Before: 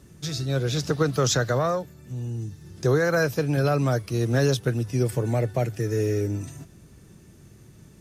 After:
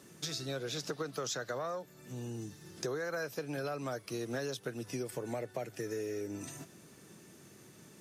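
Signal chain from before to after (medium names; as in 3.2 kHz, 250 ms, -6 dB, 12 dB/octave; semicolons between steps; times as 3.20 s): high-pass 170 Hz 12 dB/octave; bass shelf 240 Hz -8.5 dB; compression 5:1, threshold -37 dBFS, peak gain reduction 15 dB; trim +1 dB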